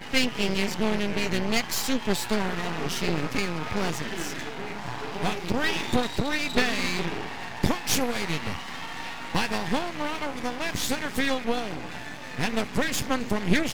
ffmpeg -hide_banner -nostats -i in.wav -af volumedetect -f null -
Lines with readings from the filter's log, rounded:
mean_volume: -26.9 dB
max_volume: -6.0 dB